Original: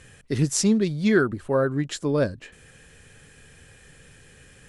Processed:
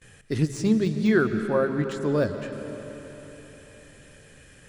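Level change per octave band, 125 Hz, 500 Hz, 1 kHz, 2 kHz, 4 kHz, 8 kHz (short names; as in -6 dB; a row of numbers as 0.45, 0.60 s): -1.0, -0.5, -0.5, -1.0, -6.5, -13.0 dB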